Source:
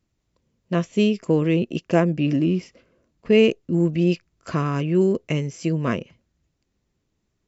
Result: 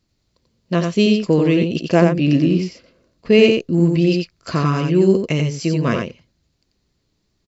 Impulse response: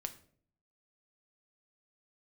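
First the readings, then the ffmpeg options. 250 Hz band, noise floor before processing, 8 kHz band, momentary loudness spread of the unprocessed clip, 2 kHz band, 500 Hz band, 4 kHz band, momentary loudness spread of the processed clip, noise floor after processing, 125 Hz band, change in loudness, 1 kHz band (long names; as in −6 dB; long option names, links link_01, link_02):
+5.0 dB, −75 dBFS, can't be measured, 8 LU, +5.5 dB, +5.0 dB, +7.5 dB, 8 LU, −69 dBFS, +5.0 dB, +5.0 dB, +5.0 dB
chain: -filter_complex "[0:a]equalizer=frequency=4400:width_type=o:width=0.51:gain=10.5,asplit=2[link_01][link_02];[link_02]aecho=0:1:89:0.596[link_03];[link_01][link_03]amix=inputs=2:normalize=0,volume=3.5dB"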